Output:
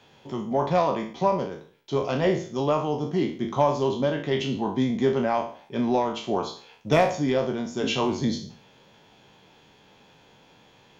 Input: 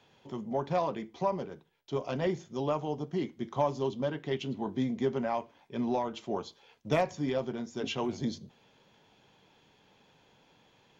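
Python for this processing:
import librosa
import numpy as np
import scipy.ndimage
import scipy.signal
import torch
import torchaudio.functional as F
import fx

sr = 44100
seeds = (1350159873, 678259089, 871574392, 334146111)

y = fx.spec_trails(x, sr, decay_s=0.46)
y = F.gain(torch.from_numpy(y), 6.5).numpy()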